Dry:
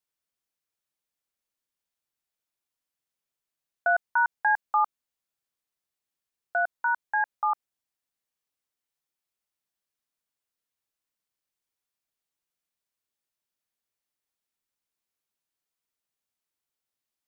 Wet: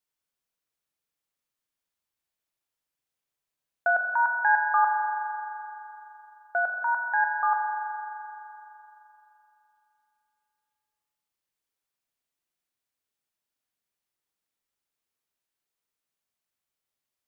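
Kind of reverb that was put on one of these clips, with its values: spring tank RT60 3.2 s, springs 42 ms, chirp 65 ms, DRR 4 dB

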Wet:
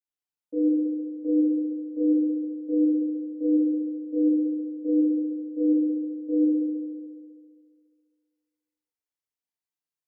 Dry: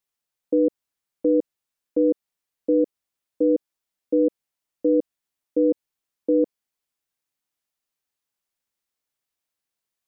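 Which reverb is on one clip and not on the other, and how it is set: FDN reverb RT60 2.1 s, low-frequency decay 0.9×, high-frequency decay 0.75×, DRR -9.5 dB; trim -20.5 dB

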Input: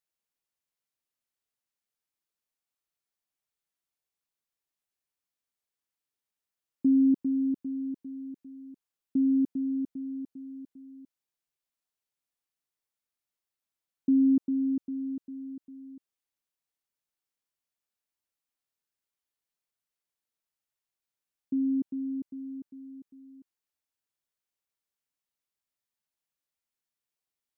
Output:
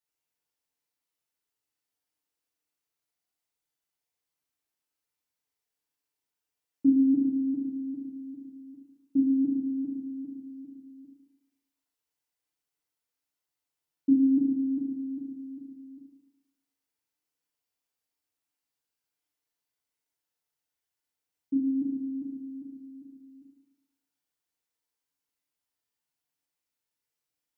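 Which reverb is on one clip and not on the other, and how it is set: FDN reverb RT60 1.2 s, low-frequency decay 0.75×, high-frequency decay 0.85×, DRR -6 dB; trim -4.5 dB

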